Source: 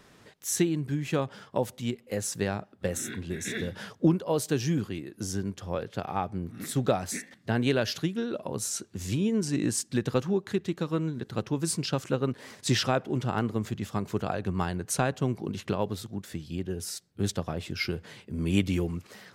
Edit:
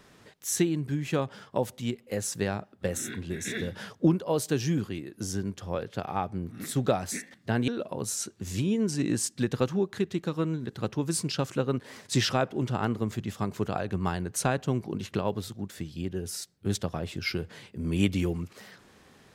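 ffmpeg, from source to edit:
ffmpeg -i in.wav -filter_complex "[0:a]asplit=2[link_01][link_02];[link_01]atrim=end=7.682[link_03];[link_02]atrim=start=8.218[link_04];[link_03][link_04]acrossfade=duration=0.004:curve1=hsin:curve2=hsin" out.wav

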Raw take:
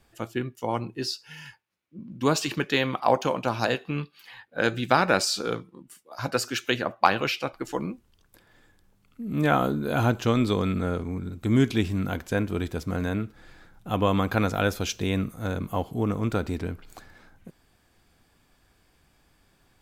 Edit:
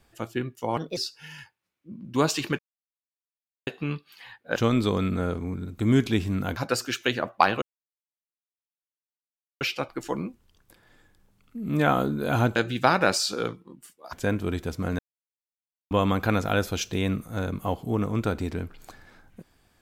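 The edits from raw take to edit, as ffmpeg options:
ffmpeg -i in.wav -filter_complex "[0:a]asplit=12[link_01][link_02][link_03][link_04][link_05][link_06][link_07][link_08][link_09][link_10][link_11][link_12];[link_01]atrim=end=0.774[link_13];[link_02]atrim=start=0.77:end=1.04,asetpts=PTS-STARTPTS,asetrate=59976,aresample=44100,atrim=end_sample=8755,asetpts=PTS-STARTPTS[link_14];[link_03]atrim=start=1.036:end=2.66,asetpts=PTS-STARTPTS,afade=type=out:start_time=1.62:duration=0.004:curve=hsin[link_15];[link_04]atrim=start=2.66:end=3.74,asetpts=PTS-STARTPTS,volume=0[link_16];[link_05]atrim=start=3.74:end=4.632,asetpts=PTS-STARTPTS,afade=type=in:duration=0.004:curve=hsin[link_17];[link_06]atrim=start=10.198:end=12.212[link_18];[link_07]atrim=start=6.198:end=7.25,asetpts=PTS-STARTPTS,afade=type=out:start_time=1.048:duration=0.004:curve=hsin,apad=pad_dur=1.99[link_19];[link_08]atrim=start=7.25:end=10.202,asetpts=PTS-STARTPTS,afade=type=in:duration=0.004:curve=hsin[link_20];[link_09]atrim=start=4.628:end=6.202[link_21];[link_10]atrim=start=12.208:end=13.07,asetpts=PTS-STARTPTS,afade=type=out:start_time=0.858:duration=0.004:curve=hsin[link_22];[link_11]atrim=start=13.07:end=13.99,asetpts=PTS-STARTPTS,volume=0[link_23];[link_12]atrim=start=13.99,asetpts=PTS-STARTPTS,afade=type=in:duration=0.004:curve=hsin[link_24];[link_13][link_14]acrossfade=duration=0.004:curve1=hsin:curve2=hsin[link_25];[link_15][link_16][link_17]concat=n=3:v=0:a=1[link_26];[link_25][link_26]acrossfade=duration=0.004:curve1=hsin:curve2=hsin[link_27];[link_27][link_18]acrossfade=duration=0.004:curve1=hsin:curve2=hsin[link_28];[link_19][link_20]concat=n=2:v=0:a=1[link_29];[link_28][link_29]acrossfade=duration=0.004:curve1=hsin:curve2=hsin[link_30];[link_30][link_21]acrossfade=duration=0.004:curve1=hsin:curve2=hsin[link_31];[link_22][link_23][link_24]concat=n=3:v=0:a=1[link_32];[link_31][link_32]acrossfade=duration=0.004:curve1=hsin:curve2=hsin" out.wav

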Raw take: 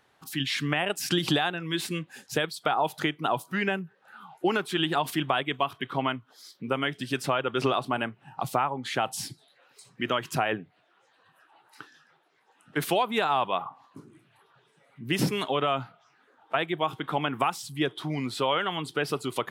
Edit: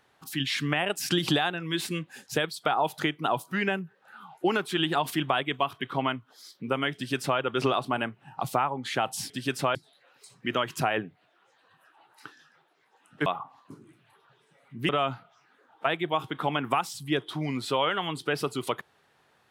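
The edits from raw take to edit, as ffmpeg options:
ffmpeg -i in.wav -filter_complex "[0:a]asplit=5[link_01][link_02][link_03][link_04][link_05];[link_01]atrim=end=9.302[link_06];[link_02]atrim=start=6.948:end=7.402[link_07];[link_03]atrim=start=9.298:end=12.812[link_08];[link_04]atrim=start=13.518:end=15.152[link_09];[link_05]atrim=start=15.578[link_10];[link_06][link_07]acrossfade=duration=0.004:curve1=hsin:curve2=hsin[link_11];[link_11][link_08]acrossfade=duration=0.004:curve1=hsin:curve2=hsin[link_12];[link_12][link_09]acrossfade=duration=0.004:curve1=hsin:curve2=hsin[link_13];[link_13][link_10]acrossfade=duration=0.004:curve1=hsin:curve2=hsin" out.wav

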